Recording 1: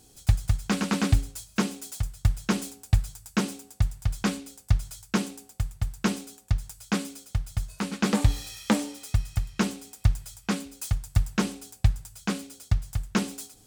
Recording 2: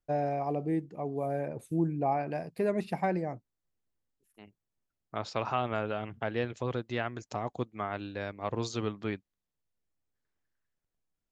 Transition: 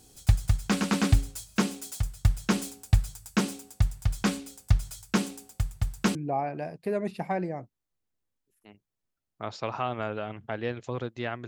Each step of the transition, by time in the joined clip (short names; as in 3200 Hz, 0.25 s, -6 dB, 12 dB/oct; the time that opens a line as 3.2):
recording 1
6.15 switch to recording 2 from 1.88 s